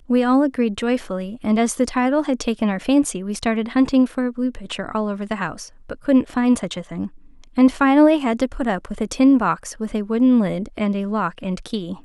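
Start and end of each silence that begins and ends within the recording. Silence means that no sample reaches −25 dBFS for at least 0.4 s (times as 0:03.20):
0:07.07–0:07.58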